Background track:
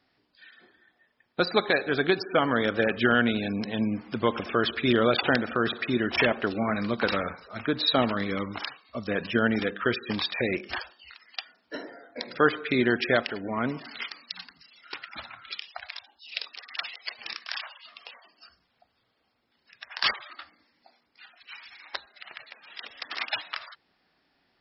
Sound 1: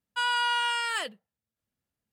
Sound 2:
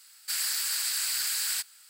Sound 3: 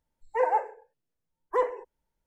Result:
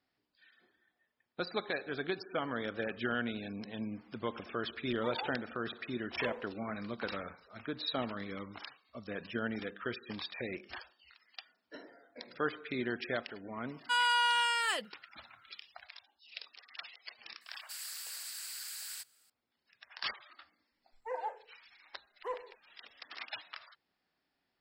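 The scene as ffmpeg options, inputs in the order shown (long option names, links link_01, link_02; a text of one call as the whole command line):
ffmpeg -i bed.wav -i cue0.wav -i cue1.wav -i cue2.wav -filter_complex "[3:a]asplit=2[link_01][link_02];[0:a]volume=-12.5dB[link_03];[link_01]acompressor=threshold=-25dB:ratio=6:attack=3.2:release=140:knee=1:detection=peak[link_04];[link_02]equalizer=frequency=270:width_type=o:width=1.3:gain=-4[link_05];[link_04]atrim=end=2.26,asetpts=PTS-STARTPTS,volume=-12.5dB,afade=type=in:duration=0.004:curve=hsin,afade=type=out:start_time=2.256:duration=0.004:curve=hsin,adelay=206829S[link_06];[1:a]atrim=end=2.12,asetpts=PTS-STARTPTS,volume=-2dB,afade=type=in:duration=0.004:curve=hsin,afade=type=out:start_time=2.116:duration=0.004:curve=hsin,adelay=13730[link_07];[2:a]atrim=end=1.89,asetpts=PTS-STARTPTS,volume=-14dB,afade=type=in:duration=0.004:curve=hsin,afade=type=out:start_time=1.886:duration=0.004:curve=hsin,adelay=17410[link_08];[link_05]atrim=end=2.26,asetpts=PTS-STARTPTS,volume=-13dB,afade=type=in:duration=0.004:curve=hsin,afade=type=out:start_time=2.256:duration=0.004:curve=hsin,adelay=20710[link_09];[link_03][link_06][link_07][link_08][link_09]amix=inputs=5:normalize=0" out.wav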